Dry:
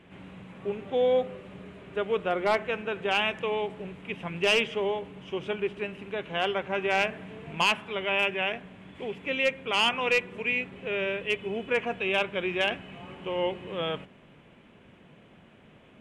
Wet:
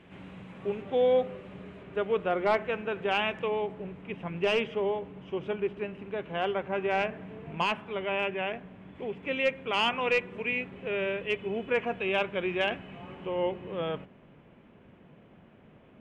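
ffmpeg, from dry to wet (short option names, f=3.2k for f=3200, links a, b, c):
-af "asetnsamples=n=441:p=0,asendcmd='0.82 lowpass f 3700;1.83 lowpass f 2300;3.48 lowpass f 1300;9.23 lowpass f 2300;13.26 lowpass f 1300',lowpass=f=6.9k:p=1"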